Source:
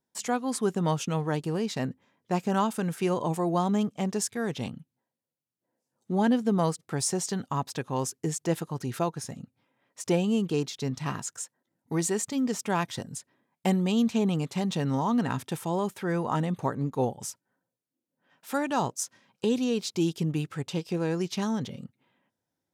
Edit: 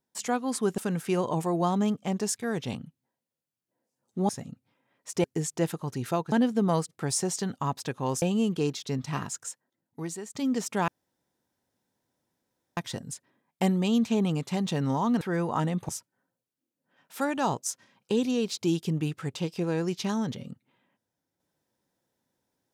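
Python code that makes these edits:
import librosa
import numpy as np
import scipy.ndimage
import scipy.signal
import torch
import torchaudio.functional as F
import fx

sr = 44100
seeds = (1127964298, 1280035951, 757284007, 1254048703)

y = fx.edit(x, sr, fx.cut(start_s=0.78, length_s=1.93),
    fx.swap(start_s=6.22, length_s=1.9, other_s=9.2, other_length_s=0.95),
    fx.fade_out_to(start_s=11.28, length_s=1.0, floor_db=-15.0),
    fx.insert_room_tone(at_s=12.81, length_s=1.89),
    fx.cut(start_s=15.25, length_s=0.72),
    fx.cut(start_s=16.65, length_s=0.57), tone=tone)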